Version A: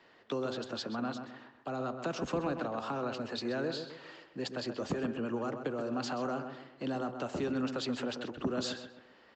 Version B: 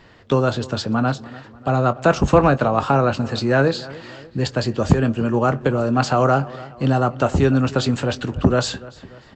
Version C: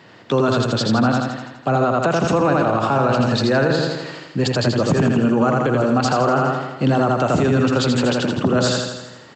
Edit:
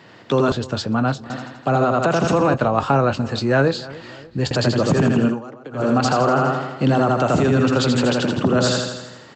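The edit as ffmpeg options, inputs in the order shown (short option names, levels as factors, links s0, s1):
-filter_complex "[1:a]asplit=2[s0][s1];[2:a]asplit=4[s2][s3][s4][s5];[s2]atrim=end=0.522[s6];[s0]atrim=start=0.518:end=1.302[s7];[s3]atrim=start=1.298:end=2.542[s8];[s1]atrim=start=2.538:end=4.512[s9];[s4]atrim=start=4.508:end=5.42[s10];[0:a]atrim=start=5.26:end=5.87[s11];[s5]atrim=start=5.71[s12];[s6][s7]acrossfade=d=0.004:c1=hsin:c2=hsin[s13];[s13][s8]acrossfade=d=0.004:c1=hsin:c2=hsin[s14];[s14][s9]acrossfade=d=0.004:c1=hsin:c2=hsin[s15];[s15][s10]acrossfade=d=0.004:c1=hsin:c2=hsin[s16];[s16][s11]acrossfade=d=0.16:c1=tri:c2=tri[s17];[s17][s12]acrossfade=d=0.16:c1=tri:c2=tri"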